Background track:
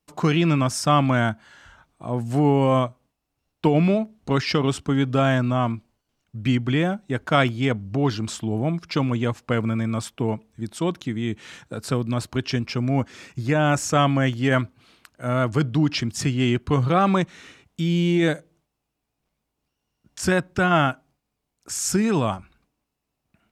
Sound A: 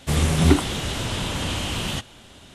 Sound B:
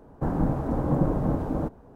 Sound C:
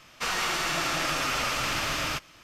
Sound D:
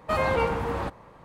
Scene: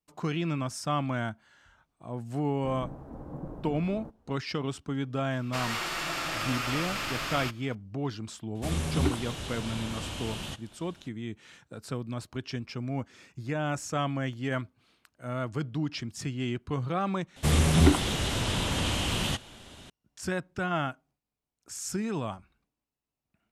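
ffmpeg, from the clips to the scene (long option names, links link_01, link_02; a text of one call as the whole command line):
ffmpeg -i bed.wav -i cue0.wav -i cue1.wav -i cue2.wav -filter_complex "[1:a]asplit=2[link_01][link_02];[0:a]volume=-11dB[link_03];[3:a]equalizer=frequency=6000:width_type=o:width=0.2:gain=-5.5[link_04];[link_01]bandreject=frequency=2000:width=22[link_05];[link_02]acontrast=47[link_06];[link_03]asplit=2[link_07][link_08];[link_07]atrim=end=17.364[link_09];[link_06]atrim=end=2.54,asetpts=PTS-STARTPTS,volume=-8dB[link_10];[link_08]atrim=start=19.896[link_11];[2:a]atrim=end=1.95,asetpts=PTS-STARTPTS,volume=-16.5dB,afade=type=in:duration=0.004:curve=hsin,afade=type=out:start_time=1.946:duration=0.004:curve=hsin,adelay=2420[link_12];[link_04]atrim=end=2.43,asetpts=PTS-STARTPTS,volume=-4.5dB,afade=type=in:duration=0.004:curve=hsin,afade=type=out:start_time=2.426:duration=0.004:curve=hsin,adelay=5320[link_13];[link_05]atrim=end=2.54,asetpts=PTS-STARTPTS,volume=-10.5dB,afade=type=in:duration=0.004:curve=hsin,afade=type=out:start_time=2.536:duration=0.004:curve=hsin,adelay=8550[link_14];[link_09][link_10]acrossfade=duration=0.004:curve1=hsin:curve2=hsin[link_15];[link_15][link_11]acrossfade=duration=0.004:curve1=hsin:curve2=hsin[link_16];[link_16][link_12][link_13][link_14]amix=inputs=4:normalize=0" out.wav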